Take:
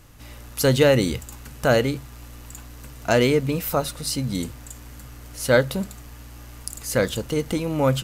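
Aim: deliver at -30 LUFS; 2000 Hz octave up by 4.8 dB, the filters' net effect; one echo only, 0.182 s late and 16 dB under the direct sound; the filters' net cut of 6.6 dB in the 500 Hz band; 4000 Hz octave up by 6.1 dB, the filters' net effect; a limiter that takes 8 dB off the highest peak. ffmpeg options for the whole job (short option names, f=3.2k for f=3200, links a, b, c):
-af "equalizer=f=500:t=o:g=-8,equalizer=f=2k:t=o:g=5.5,equalizer=f=4k:t=o:g=6,alimiter=limit=-12dB:level=0:latency=1,aecho=1:1:182:0.158,volume=-4.5dB"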